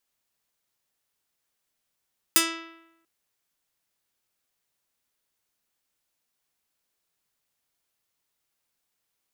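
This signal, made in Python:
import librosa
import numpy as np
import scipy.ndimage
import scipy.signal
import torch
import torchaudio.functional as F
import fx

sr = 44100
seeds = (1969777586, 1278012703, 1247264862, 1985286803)

y = fx.pluck(sr, length_s=0.69, note=64, decay_s=0.91, pick=0.42, brightness='medium')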